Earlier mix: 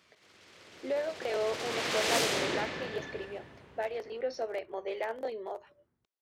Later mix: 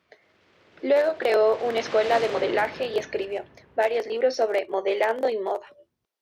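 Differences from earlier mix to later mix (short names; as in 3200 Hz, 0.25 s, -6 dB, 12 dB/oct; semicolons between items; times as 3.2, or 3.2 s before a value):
speech +12.0 dB; background: add tape spacing loss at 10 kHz 22 dB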